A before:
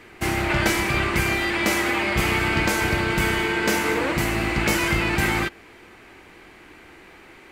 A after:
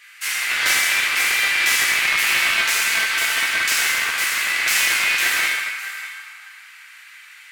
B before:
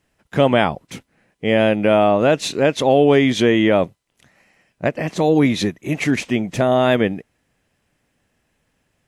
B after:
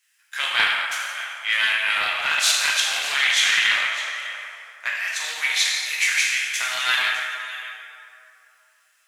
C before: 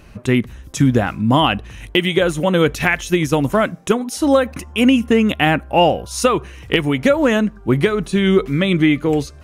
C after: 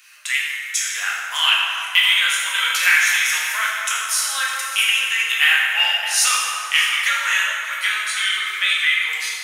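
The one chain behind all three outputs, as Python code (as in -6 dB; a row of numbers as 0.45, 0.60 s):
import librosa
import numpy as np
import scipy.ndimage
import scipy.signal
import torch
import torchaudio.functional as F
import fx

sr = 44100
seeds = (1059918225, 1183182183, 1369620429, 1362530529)

y = scipy.signal.sosfilt(scipy.signal.butter(4, 1500.0, 'highpass', fs=sr, output='sos'), x)
y = fx.high_shelf(y, sr, hz=4400.0, db=9.0)
y = y + 10.0 ** (-14.5 / 20.0) * np.pad(y, (int(606 * sr / 1000.0), 0))[:len(y)]
y = fx.rev_plate(y, sr, seeds[0], rt60_s=2.7, hf_ratio=0.5, predelay_ms=0, drr_db=-6.0)
y = fx.doppler_dist(y, sr, depth_ms=0.15)
y = y * 10.0 ** (-1.0 / 20.0)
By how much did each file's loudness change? +4.5, -3.0, -0.5 LU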